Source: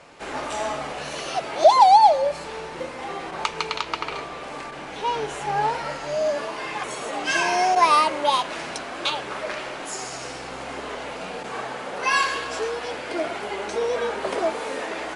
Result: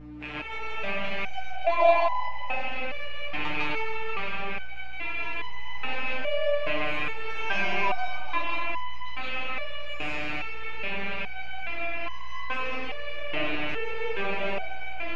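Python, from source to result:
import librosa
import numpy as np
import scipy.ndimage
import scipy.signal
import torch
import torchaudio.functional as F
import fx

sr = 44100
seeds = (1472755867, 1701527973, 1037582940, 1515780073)

y = fx.rattle_buzz(x, sr, strikes_db=-45.0, level_db=-9.0)
y = scipy.signal.sosfilt(scipy.signal.butter(2, 2800.0, 'lowpass', fs=sr, output='sos'), y)
y = fx.rev_freeverb(y, sr, rt60_s=1.6, hf_ratio=0.4, predelay_ms=115, drr_db=-4.0)
y = fx.add_hum(y, sr, base_hz=60, snr_db=12)
y = fx.resonator_held(y, sr, hz=2.4, low_hz=150.0, high_hz=1000.0)
y = y * 10.0 ** (1.5 / 20.0)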